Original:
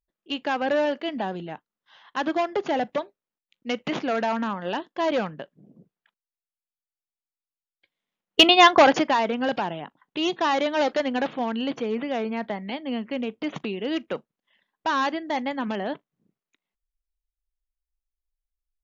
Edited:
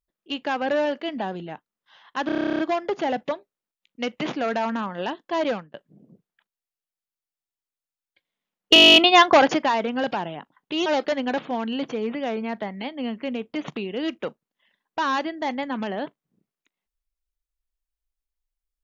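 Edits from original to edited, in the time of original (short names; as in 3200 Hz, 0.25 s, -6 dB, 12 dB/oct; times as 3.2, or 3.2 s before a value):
2.26 stutter 0.03 s, 12 plays
5.16–5.41 fade out
8.41 stutter 0.02 s, 12 plays
10.31–10.74 cut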